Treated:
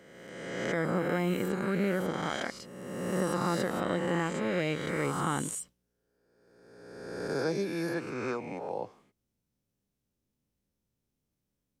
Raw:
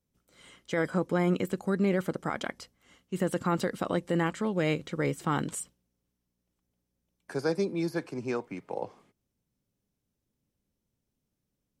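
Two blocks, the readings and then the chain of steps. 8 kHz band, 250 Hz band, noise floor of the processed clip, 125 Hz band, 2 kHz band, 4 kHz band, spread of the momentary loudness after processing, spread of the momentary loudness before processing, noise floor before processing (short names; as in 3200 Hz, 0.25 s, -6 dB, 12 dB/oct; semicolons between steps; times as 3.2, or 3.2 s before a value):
+2.0 dB, -2.0 dB, -83 dBFS, -2.0 dB, +1.0 dB, +1.5 dB, 12 LU, 11 LU, -83 dBFS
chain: spectral swells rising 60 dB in 1.59 s; gain -4.5 dB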